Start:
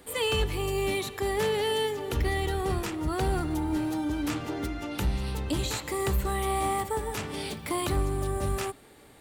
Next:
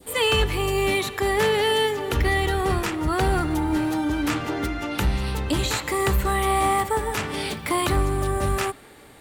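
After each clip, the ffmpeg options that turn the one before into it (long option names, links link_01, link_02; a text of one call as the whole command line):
ffmpeg -i in.wav -af "adynamicequalizer=threshold=0.00631:dfrequency=1600:dqfactor=0.73:tfrequency=1600:tqfactor=0.73:attack=5:release=100:ratio=0.375:range=2.5:mode=boostabove:tftype=bell,volume=5dB" out.wav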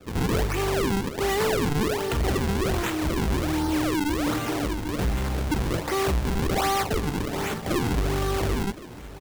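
ffmpeg -i in.wav -af "acrusher=samples=42:mix=1:aa=0.000001:lfo=1:lforange=67.2:lforate=1.3,asoftclip=type=tanh:threshold=-21.5dB,aecho=1:1:1064:0.133,volume=1.5dB" out.wav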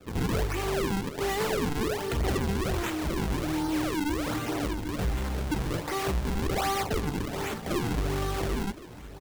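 ffmpeg -i in.wav -af "flanger=delay=0:depth=6.9:regen=-56:speed=0.43:shape=sinusoidal" out.wav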